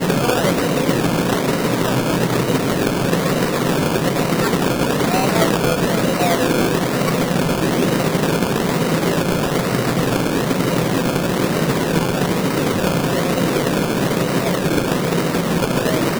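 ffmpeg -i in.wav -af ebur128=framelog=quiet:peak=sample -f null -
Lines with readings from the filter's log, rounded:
Integrated loudness:
  I:         -17.9 LUFS
  Threshold: -27.9 LUFS
Loudness range:
  LRA:         1.2 LU
  Threshold: -37.9 LUFS
  LRA low:   -18.4 LUFS
  LRA high:  -17.2 LUFS
Sample peak:
  Peak:       -2.6 dBFS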